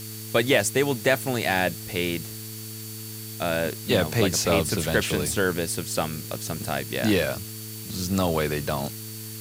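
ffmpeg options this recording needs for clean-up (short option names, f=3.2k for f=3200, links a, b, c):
-af "adeclick=t=4,bandreject=f=109.4:t=h:w=4,bandreject=f=218.8:t=h:w=4,bandreject=f=328.2:t=h:w=4,bandreject=f=437.6:t=h:w=4,bandreject=f=4.5k:w=30,afftdn=nr=30:nf=-37"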